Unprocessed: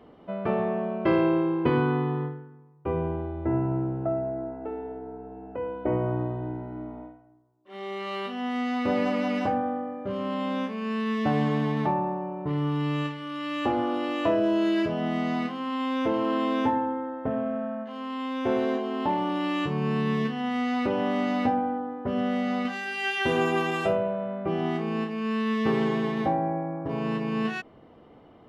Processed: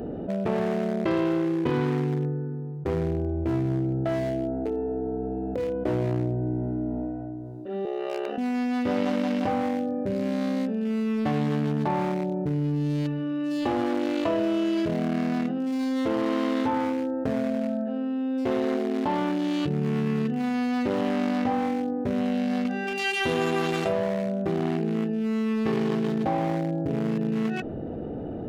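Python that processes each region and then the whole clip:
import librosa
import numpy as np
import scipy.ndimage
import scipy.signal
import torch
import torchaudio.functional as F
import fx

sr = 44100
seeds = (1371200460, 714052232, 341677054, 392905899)

y = fx.chain(x, sr, fx.highpass(hz=400.0, slope=24),
    fx.ring_mod(carrier_hz=33.0), at=(7.85, 8.38))
y = fx.wiener(y, sr, points=41)
y = fx.high_shelf(y, sr, hz=3400.0, db=9.0)
y = fx.env_flatten(y, sr, amount_pct=70)
y = y * librosa.db_to_amplitude(-3.0)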